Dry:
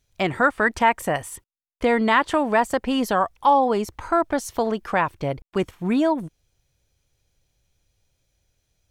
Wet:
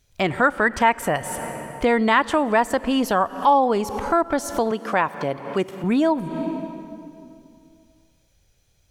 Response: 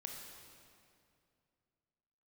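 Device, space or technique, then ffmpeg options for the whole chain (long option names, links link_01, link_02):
ducked reverb: -filter_complex "[0:a]asplit=3[link_01][link_02][link_03];[1:a]atrim=start_sample=2205[link_04];[link_02][link_04]afir=irnorm=-1:irlink=0[link_05];[link_03]apad=whole_len=392843[link_06];[link_05][link_06]sidechaincompress=threshold=-36dB:ratio=16:attack=16:release=178,volume=5dB[link_07];[link_01][link_07]amix=inputs=2:normalize=0,asettb=1/sr,asplit=3[link_08][link_09][link_10];[link_08]atrim=end=4.714[link_11];[link_09]atrim=start=4.71:end=5.84,asetpts=PTS-STARTPTS,afade=type=in:duration=0.004:curve=qsin,afade=type=out:start_time=1.126:duration=0.004:curve=qsin,highpass=190[link_12];[link_10]atrim=start=5.836[link_13];[link_11][link_12]acrossfade=duration=0.004:curve1=hsin:curve2=qsin[link_14];[link_14][link_13]acrossfade=duration=0.004:curve1=qsin:curve2=hsin"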